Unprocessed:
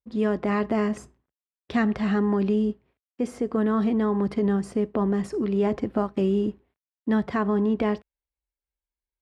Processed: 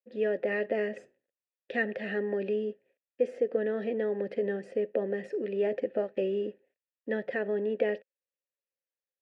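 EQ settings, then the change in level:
formant filter e
high-pass filter 120 Hz
+8.5 dB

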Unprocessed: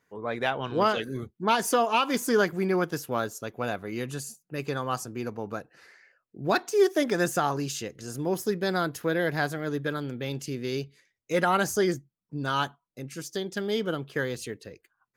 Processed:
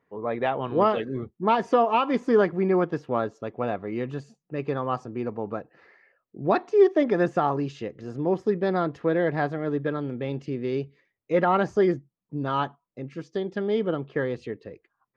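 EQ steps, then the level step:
head-to-tape spacing loss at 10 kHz 43 dB
low-shelf EQ 180 Hz −7.5 dB
notch filter 1,500 Hz, Q 7.8
+7.0 dB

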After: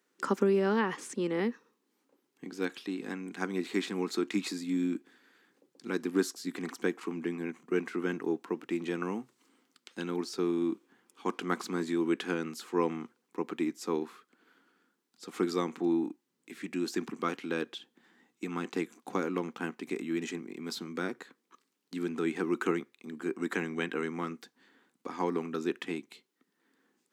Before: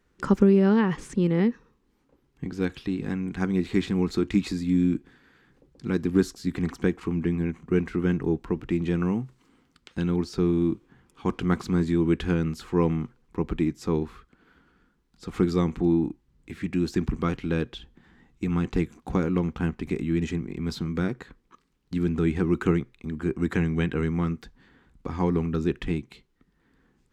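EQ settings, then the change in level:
high-pass filter 240 Hz 24 dB per octave
dynamic equaliser 1,200 Hz, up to +4 dB, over −40 dBFS, Q 0.73
high-shelf EQ 4,800 Hz +10 dB
−5.5 dB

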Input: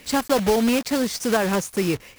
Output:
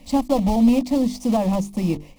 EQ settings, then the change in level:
spectral tilt −3 dB per octave
mains-hum notches 50/100/150/200/250/300/350/400/450 Hz
phaser with its sweep stopped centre 410 Hz, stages 6
0.0 dB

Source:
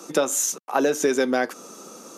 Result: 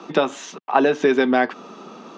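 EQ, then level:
loudspeaker in its box 130–3,400 Hz, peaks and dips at 310 Hz −6 dB, 520 Hz −10 dB, 1,400 Hz −5 dB, 2,200 Hz −3 dB
+8.0 dB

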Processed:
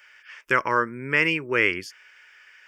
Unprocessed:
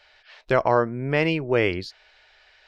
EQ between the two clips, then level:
high-pass filter 700 Hz 6 dB per octave
high-shelf EQ 4,500 Hz +7.5 dB
phaser with its sweep stopped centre 1,700 Hz, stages 4
+6.5 dB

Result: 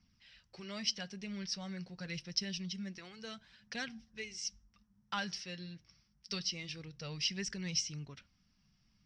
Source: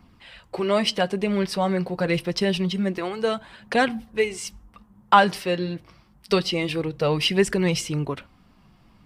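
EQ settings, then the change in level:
transistor ladder low-pass 5,900 Hz, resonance 80%
flat-topped bell 580 Hz −10.5 dB 2.3 octaves
−4.5 dB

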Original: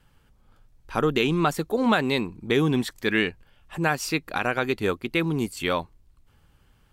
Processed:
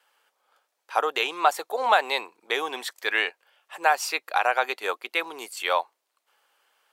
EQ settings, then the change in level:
high-pass filter 540 Hz 24 dB per octave
dynamic equaliser 810 Hz, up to +7 dB, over −41 dBFS, Q 2.1
+1.0 dB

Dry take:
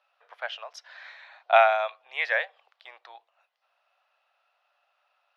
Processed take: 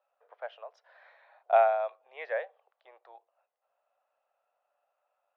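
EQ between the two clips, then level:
resonant band-pass 450 Hz, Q 1.6
+2.0 dB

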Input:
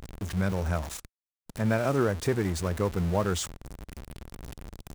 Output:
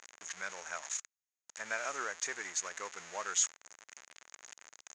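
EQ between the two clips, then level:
high-pass filter 790 Hz 12 dB per octave
transistor ladder low-pass 6,900 Hz, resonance 85%
parametric band 1,900 Hz +9.5 dB 1.3 octaves
+3.0 dB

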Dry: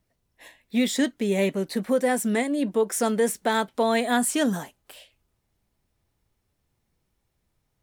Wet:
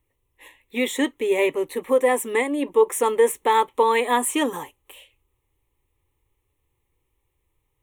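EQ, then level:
dynamic equaliser 1,000 Hz, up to +7 dB, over −36 dBFS, Q 0.7
phaser with its sweep stopped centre 1,000 Hz, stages 8
+3.5 dB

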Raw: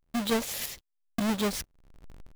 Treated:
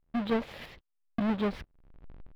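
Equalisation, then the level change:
high-frequency loss of the air 410 metres
0.0 dB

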